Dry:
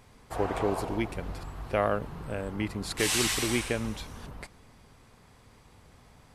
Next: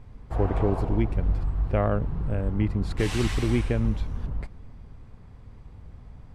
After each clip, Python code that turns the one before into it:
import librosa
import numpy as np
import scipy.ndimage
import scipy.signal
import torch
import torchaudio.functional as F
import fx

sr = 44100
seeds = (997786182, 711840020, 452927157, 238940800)

y = fx.riaa(x, sr, side='playback')
y = F.gain(torch.from_numpy(y), -1.5).numpy()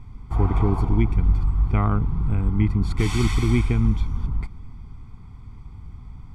y = x + 0.98 * np.pad(x, (int(0.9 * sr / 1000.0), 0))[:len(x)]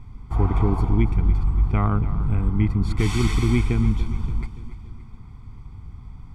y = fx.echo_feedback(x, sr, ms=287, feedback_pct=52, wet_db=-14.5)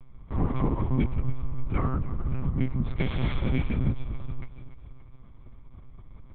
y = fx.lpc_monotone(x, sr, seeds[0], pitch_hz=130.0, order=8)
y = F.gain(torch.from_numpy(y), -6.0).numpy()